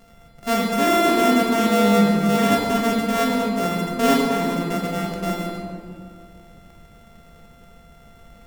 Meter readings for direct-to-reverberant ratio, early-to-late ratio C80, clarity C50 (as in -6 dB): -2.0 dB, 2.0 dB, 0.5 dB